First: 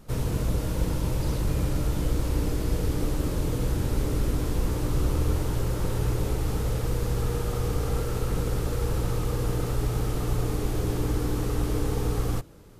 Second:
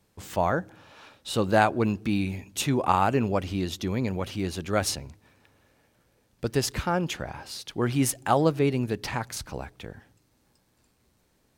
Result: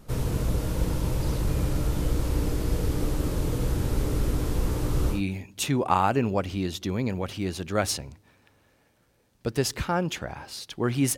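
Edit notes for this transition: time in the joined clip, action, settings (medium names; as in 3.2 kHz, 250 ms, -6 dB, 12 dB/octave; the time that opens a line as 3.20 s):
first
5.16 s: go over to second from 2.14 s, crossfade 0.14 s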